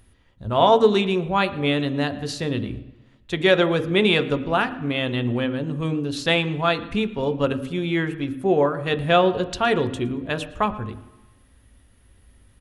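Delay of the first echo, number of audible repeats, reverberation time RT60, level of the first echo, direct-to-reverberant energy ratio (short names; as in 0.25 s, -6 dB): 0.114 s, 1, 1.0 s, -21.0 dB, 9.0 dB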